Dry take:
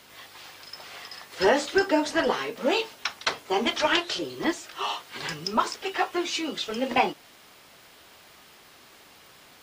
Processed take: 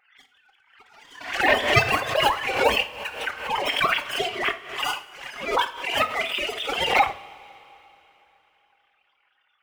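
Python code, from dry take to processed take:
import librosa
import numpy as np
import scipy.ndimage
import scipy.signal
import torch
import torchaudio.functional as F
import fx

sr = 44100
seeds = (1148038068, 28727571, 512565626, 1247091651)

y = fx.sine_speech(x, sr)
y = fx.leveller(y, sr, passes=2)
y = fx.pitch_keep_formants(y, sr, semitones=9.0)
y = fx.rev_double_slope(y, sr, seeds[0], early_s=0.37, late_s=3.4, knee_db=-18, drr_db=8.0)
y = fx.pre_swell(y, sr, db_per_s=89.0)
y = y * librosa.db_to_amplitude(-4.0)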